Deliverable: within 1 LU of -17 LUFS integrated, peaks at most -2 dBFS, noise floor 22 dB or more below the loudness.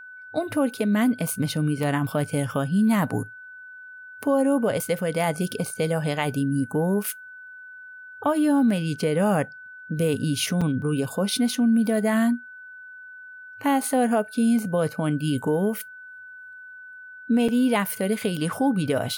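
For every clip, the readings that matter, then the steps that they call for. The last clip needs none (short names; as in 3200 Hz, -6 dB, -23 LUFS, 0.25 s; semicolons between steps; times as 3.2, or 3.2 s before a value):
dropouts 2; longest dropout 5.5 ms; steady tone 1500 Hz; tone level -40 dBFS; loudness -24.0 LUFS; peak -10.5 dBFS; loudness target -17.0 LUFS
-> interpolate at 10.61/17.48, 5.5 ms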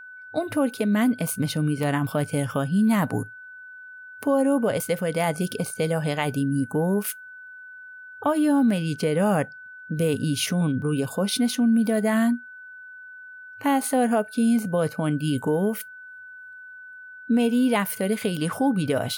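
dropouts 0; steady tone 1500 Hz; tone level -40 dBFS
-> notch 1500 Hz, Q 30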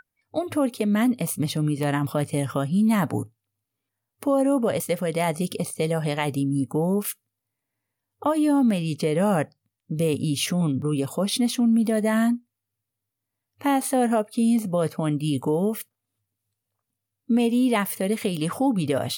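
steady tone none; loudness -24.0 LUFS; peak -11.0 dBFS; loudness target -17.0 LUFS
-> gain +7 dB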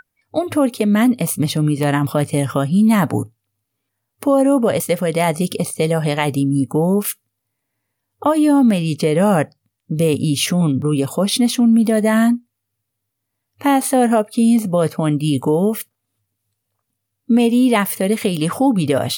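loudness -17.0 LUFS; peak -4.0 dBFS; noise floor -77 dBFS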